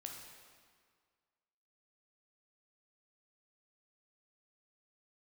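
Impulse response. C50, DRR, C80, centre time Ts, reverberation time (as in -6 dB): 3.0 dB, 1.0 dB, 4.5 dB, 64 ms, 1.8 s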